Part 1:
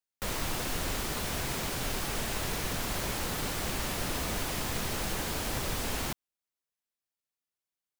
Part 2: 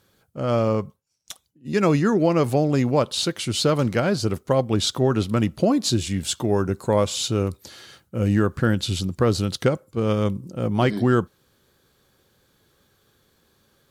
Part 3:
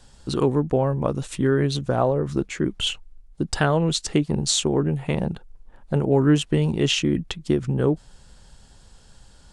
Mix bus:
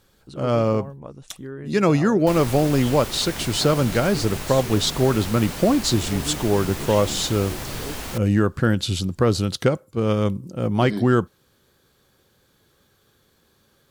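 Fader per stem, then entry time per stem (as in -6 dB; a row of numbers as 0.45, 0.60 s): +1.0, +1.0, -15.0 dB; 2.05, 0.00, 0.00 s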